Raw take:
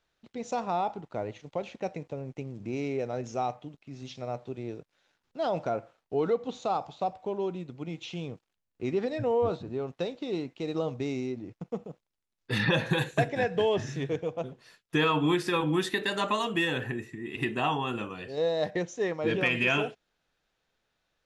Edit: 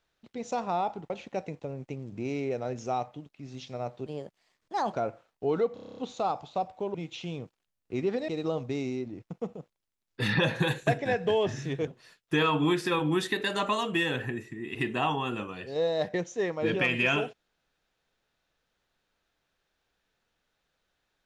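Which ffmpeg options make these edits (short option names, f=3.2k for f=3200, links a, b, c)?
-filter_complex "[0:a]asplit=15[a][b][c][d][e][f][g][h][i][j][k][l][m][n][o];[a]atrim=end=1.102[p];[b]atrim=start=1.578:end=4.544[q];[c]atrim=start=4.54:end=5.62,asetpts=PTS-STARTPTS,asetrate=55125,aresample=44100,atrim=end_sample=38102,asetpts=PTS-STARTPTS[r];[d]atrim=start=5.616:end=6.462[s];[e]atrim=start=6.428:end=6.462[t];[f]atrim=start=6.428:end=6.462[u];[g]atrim=start=6.428:end=6.462[v];[h]atrim=start=6.428:end=6.462[w];[i]atrim=start=6.428:end=6.462[x];[j]atrim=start=6.428:end=6.462[y];[k]atrim=start=6.428:end=6.462[z];[l]atrim=start=6.428:end=7.402[aa];[m]atrim=start=7.838:end=9.182[ab];[n]atrim=start=10.588:end=14.182[ac];[o]atrim=start=14.488[ad];[p][q]acrossfade=d=0.004:c1=hsin:c2=hsin[ae];[ae][r]acrossfade=d=0.004:c1=hsin:c2=hsin[af];[af][s]acrossfade=d=0.004:c1=hsin:c2=hsin[ag];[ag][t]acrossfade=d=0.004:c1=hsin:c2=hsin[ah];[ah][u]acrossfade=d=0.004:c1=hsin:c2=hsin[ai];[ai][v]acrossfade=d=0.004:c1=hsin:c2=hsin[aj];[aj][w]acrossfade=d=0.004:c1=hsin:c2=hsin[ak];[ak][x]acrossfade=d=0.004:c1=hsin:c2=hsin[al];[al][y]acrossfade=d=0.004:c1=hsin:c2=hsin[am];[am][z]acrossfade=d=0.004:c1=hsin:c2=hsin[an];[an][aa]acrossfade=d=0.004:c1=hsin:c2=hsin[ao];[ao][ab]acrossfade=d=0.004:c1=hsin:c2=hsin[ap];[ap][ac]acrossfade=d=0.004:c1=hsin:c2=hsin[aq];[aq][ad]acrossfade=d=0.004:c1=hsin:c2=hsin"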